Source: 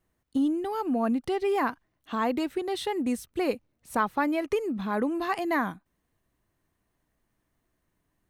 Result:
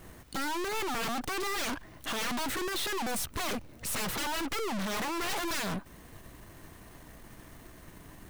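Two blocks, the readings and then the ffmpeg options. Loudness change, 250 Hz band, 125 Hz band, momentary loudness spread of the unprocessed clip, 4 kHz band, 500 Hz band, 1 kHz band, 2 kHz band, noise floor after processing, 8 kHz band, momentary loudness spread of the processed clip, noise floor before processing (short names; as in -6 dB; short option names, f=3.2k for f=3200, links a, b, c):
-4.5 dB, -9.5 dB, +2.0 dB, 6 LU, +7.0 dB, -8.5 dB, -5.0 dB, 0.0 dB, -52 dBFS, +11.5 dB, 20 LU, -77 dBFS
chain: -af "aeval=exprs='0.237*sin(PI/2*8.91*val(0)/0.237)':c=same,aeval=exprs='(tanh(79.4*val(0)+0.55)-tanh(0.55))/79.4':c=same,volume=5dB"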